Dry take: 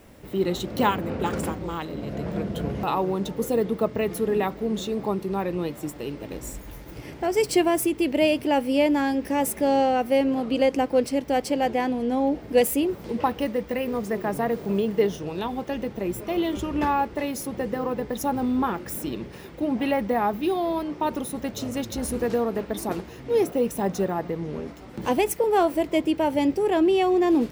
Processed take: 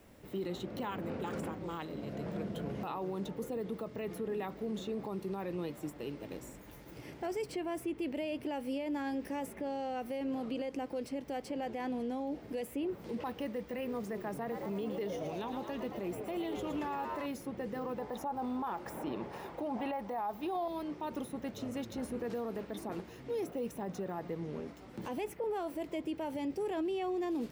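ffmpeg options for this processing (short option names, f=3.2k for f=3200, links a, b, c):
-filter_complex "[0:a]asettb=1/sr,asplit=3[a][b][c];[a]atrim=end=14.404[d];[b]atrim=start=14.4:end=17.26,asetpts=PTS-STARTPTS,afade=t=in:d=0.004:c=qsin,afade=t=out:st=2.856:d=0.004:c=qsin,asplit=8[e][f][g][h][i][j][k][l];[f]adelay=112,afreqshift=88,volume=-9dB[m];[g]adelay=224,afreqshift=176,volume=-13.4dB[n];[h]adelay=336,afreqshift=264,volume=-17.9dB[o];[i]adelay=448,afreqshift=352,volume=-22.3dB[p];[j]adelay=560,afreqshift=440,volume=-26.7dB[q];[k]adelay=672,afreqshift=528,volume=-31.2dB[r];[l]adelay=784,afreqshift=616,volume=-35.6dB[s];[e][m][n][o][p][q][r][s]amix=inputs=8:normalize=0,atrim=end_sample=126126[t];[c]atrim=start=17.256[u];[d][t]acrossfade=d=0.004:c1=hsin:c2=qsin[v];[v][u]acrossfade=d=0.004:c1=qsin:c2=hsin,asettb=1/sr,asplit=3[w][x][y];[w]atrim=end=17.984[z];[x]atrim=start=17.98:end=20.68,asetpts=PTS-STARTPTS,afade=t=in:d=0.004:c=qsin,afade=t=out:st=2.696:d=0.004:c=qsin,equalizer=f=850:w=1:g=15[aa];[y]atrim=start=20.676[ab];[z][aa]acrossfade=d=0.004:c1=hsin:c2=qsin[ac];[ac][ab]acrossfade=d=0.004:c1=qsin:c2=hsin,acrossover=split=98|3100[ad][ae][af];[ad]acompressor=threshold=-54dB:ratio=4[ag];[ae]acompressor=threshold=-22dB:ratio=4[ah];[af]acompressor=threshold=-46dB:ratio=4[ai];[ag][ah][ai]amix=inputs=3:normalize=0,alimiter=limit=-21dB:level=0:latency=1:release=16,volume=-8.5dB"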